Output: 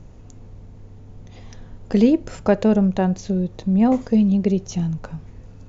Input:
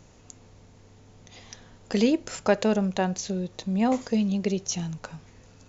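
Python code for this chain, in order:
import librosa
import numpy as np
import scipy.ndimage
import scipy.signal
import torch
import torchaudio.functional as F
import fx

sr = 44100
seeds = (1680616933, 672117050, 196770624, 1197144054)

y = fx.tilt_eq(x, sr, slope=-3.0)
y = y * 10.0 ** (1.5 / 20.0)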